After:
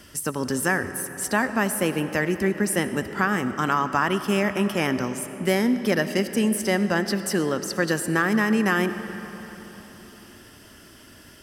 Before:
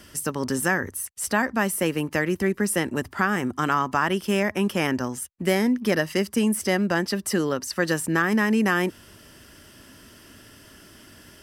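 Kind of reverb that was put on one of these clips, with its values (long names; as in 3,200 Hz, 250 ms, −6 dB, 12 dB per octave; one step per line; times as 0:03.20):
comb and all-pass reverb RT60 4.1 s, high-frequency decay 0.6×, pre-delay 40 ms, DRR 10 dB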